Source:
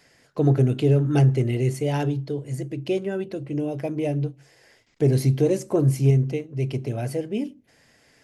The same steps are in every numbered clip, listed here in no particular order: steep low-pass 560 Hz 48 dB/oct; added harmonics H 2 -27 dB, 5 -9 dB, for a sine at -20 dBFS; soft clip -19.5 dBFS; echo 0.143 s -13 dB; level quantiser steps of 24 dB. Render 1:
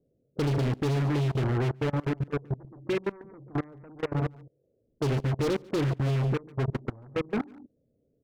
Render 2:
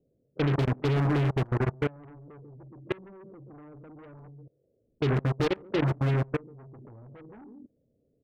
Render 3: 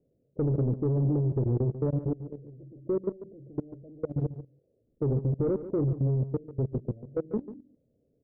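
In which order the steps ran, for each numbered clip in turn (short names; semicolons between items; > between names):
steep low-pass > added harmonics > echo > level quantiser > soft clip; steep low-pass > soft clip > echo > added harmonics > level quantiser; added harmonics > steep low-pass > level quantiser > soft clip > echo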